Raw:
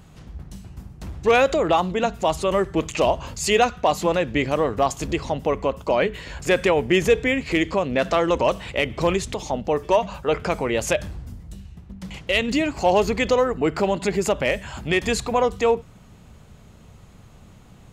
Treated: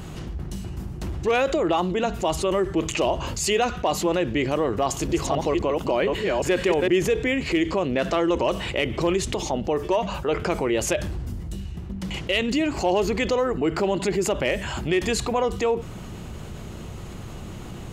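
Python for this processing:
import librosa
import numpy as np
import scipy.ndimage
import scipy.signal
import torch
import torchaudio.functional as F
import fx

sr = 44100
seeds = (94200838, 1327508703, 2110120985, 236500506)

y = fx.reverse_delay(x, sr, ms=267, wet_db=-3.0, at=(4.82, 6.88))
y = fx.small_body(y, sr, hz=(350.0, 2900.0), ring_ms=45, db=8)
y = fx.env_flatten(y, sr, amount_pct=50)
y = F.gain(torch.from_numpy(y), -8.5).numpy()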